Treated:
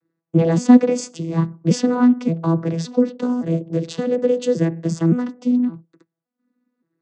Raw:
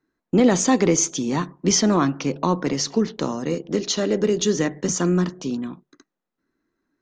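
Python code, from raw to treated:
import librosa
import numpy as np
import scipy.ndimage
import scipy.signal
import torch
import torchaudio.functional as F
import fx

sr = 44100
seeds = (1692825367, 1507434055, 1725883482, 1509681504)

y = fx.vocoder_arp(x, sr, chord='bare fifth', root=52, every_ms=568)
y = F.gain(torch.from_numpy(y), 4.0).numpy()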